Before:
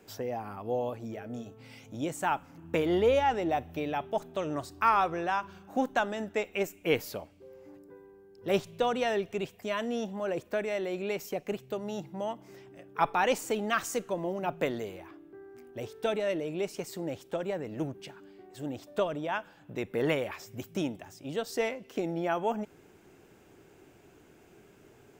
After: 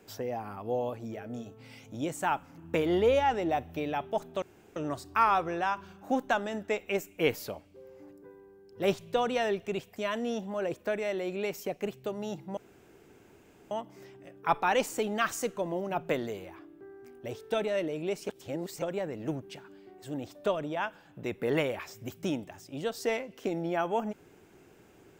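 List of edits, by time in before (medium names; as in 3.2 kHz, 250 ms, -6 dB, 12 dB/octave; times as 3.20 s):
4.42 s: insert room tone 0.34 s
12.23 s: insert room tone 1.14 s
16.81–17.34 s: reverse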